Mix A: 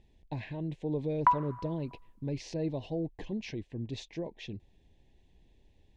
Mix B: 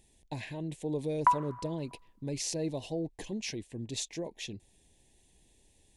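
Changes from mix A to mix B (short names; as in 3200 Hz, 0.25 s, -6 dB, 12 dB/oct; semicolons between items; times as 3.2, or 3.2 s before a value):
speech: remove air absorption 230 m; master: add low shelf 150 Hz -5.5 dB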